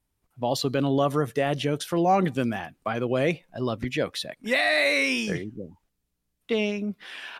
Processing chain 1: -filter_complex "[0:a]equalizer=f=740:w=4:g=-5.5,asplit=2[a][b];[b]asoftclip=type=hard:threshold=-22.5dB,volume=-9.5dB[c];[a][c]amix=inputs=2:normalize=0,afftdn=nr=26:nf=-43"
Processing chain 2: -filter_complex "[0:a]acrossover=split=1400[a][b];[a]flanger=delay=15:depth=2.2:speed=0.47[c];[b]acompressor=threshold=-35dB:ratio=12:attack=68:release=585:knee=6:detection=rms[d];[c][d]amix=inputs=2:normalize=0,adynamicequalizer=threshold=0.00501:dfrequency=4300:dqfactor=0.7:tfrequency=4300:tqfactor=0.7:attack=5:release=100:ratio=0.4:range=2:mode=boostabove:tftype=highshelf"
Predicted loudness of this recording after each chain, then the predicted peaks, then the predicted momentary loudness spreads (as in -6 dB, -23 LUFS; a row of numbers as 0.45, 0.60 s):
-24.5, -29.5 LUFS; -10.5, -12.5 dBFS; 11, 10 LU